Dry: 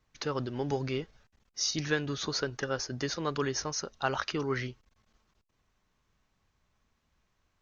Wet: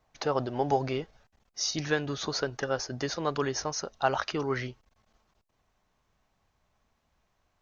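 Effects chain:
parametric band 710 Hz +14 dB 0.87 octaves, from 0:00.93 +7.5 dB

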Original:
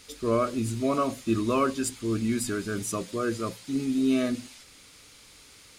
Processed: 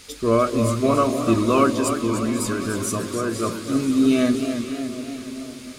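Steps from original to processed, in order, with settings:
0:01.70–0:03.36: downward compressor, threshold −28 dBFS, peak gain reduction 6 dB
delay that swaps between a low-pass and a high-pass 249 ms, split 1,000 Hz, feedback 77%, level −11 dB
feedback echo with a swinging delay time 294 ms, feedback 57%, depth 91 cents, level −9 dB
level +6.5 dB

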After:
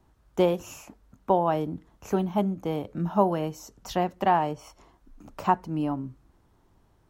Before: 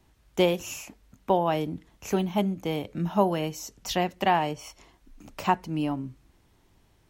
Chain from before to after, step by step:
high shelf with overshoot 1,700 Hz −6.5 dB, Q 1.5

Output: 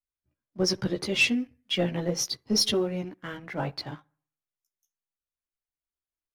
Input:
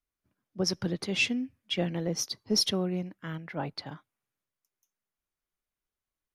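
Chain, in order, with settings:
noise reduction from a noise print of the clip's start 9 dB
bucket-brigade delay 65 ms, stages 1,024, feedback 42%, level −22 dB
multi-voice chorus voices 6, 0.67 Hz, delay 15 ms, depth 1.9 ms
leveller curve on the samples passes 1
level +3 dB

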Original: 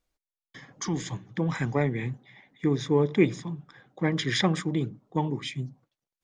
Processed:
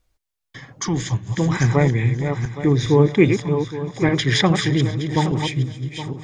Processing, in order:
feedback delay that plays each chunk backwards 409 ms, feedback 46%, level −6.5 dB
low shelf with overshoot 140 Hz +6.5 dB, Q 1.5
on a send: delay with a high-pass on its return 268 ms, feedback 63%, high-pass 2,700 Hz, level −17.5 dB
on the sum: level +7.5 dB

